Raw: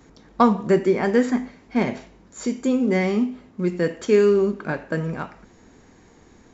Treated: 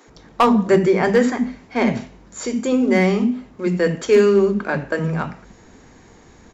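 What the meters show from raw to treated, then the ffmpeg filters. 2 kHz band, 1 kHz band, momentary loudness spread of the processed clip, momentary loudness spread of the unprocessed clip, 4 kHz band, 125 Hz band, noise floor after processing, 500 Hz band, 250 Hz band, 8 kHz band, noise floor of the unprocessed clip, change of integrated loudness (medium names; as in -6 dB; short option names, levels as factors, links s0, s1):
+5.5 dB, +3.5 dB, 11 LU, 12 LU, +6.0 dB, +4.5 dB, -48 dBFS, +3.5 dB, +3.0 dB, no reading, -52 dBFS, +3.5 dB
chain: -filter_complex "[0:a]acrossover=split=290[s0][s1];[s0]adelay=70[s2];[s2][s1]amix=inputs=2:normalize=0,volume=3.98,asoftclip=hard,volume=0.251,volume=1.88"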